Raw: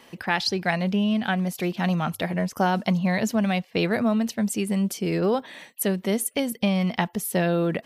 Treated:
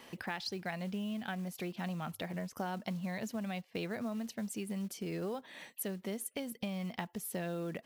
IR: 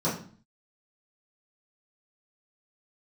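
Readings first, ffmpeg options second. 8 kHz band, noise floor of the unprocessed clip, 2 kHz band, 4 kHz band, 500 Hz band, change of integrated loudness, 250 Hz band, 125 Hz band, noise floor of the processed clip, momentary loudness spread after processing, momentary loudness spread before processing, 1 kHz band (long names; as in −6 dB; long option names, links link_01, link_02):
−12.5 dB, −54 dBFS, −15.0 dB, −14.5 dB, −15.0 dB, −15.0 dB, −15.0 dB, −15.0 dB, −64 dBFS, 2 LU, 4 LU, −15.5 dB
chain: -af "acompressor=threshold=-39dB:ratio=2.5,acrusher=bits=6:mode=log:mix=0:aa=0.000001,volume=-3dB"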